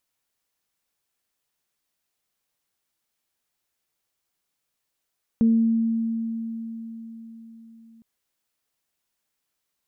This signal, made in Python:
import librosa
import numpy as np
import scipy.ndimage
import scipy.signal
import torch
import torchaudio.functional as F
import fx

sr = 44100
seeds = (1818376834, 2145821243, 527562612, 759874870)

y = fx.additive_free(sr, length_s=2.61, hz=227.0, level_db=-14.0, upper_db=(-17.5,), decay_s=4.52, upper_decays_s=(0.66,), upper_hz=(453.0,))